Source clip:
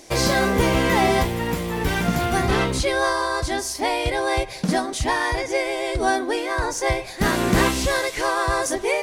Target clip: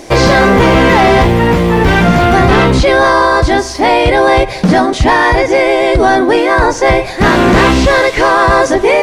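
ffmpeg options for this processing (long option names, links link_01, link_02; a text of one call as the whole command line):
ffmpeg -i in.wav -filter_complex "[0:a]acrossover=split=6500[link_01][link_02];[link_02]acompressor=threshold=-47dB:ratio=4:attack=1:release=60[link_03];[link_01][link_03]amix=inputs=2:normalize=0,highshelf=frequency=3100:gain=-10.5,apsyclip=20dB,volume=-3dB" out.wav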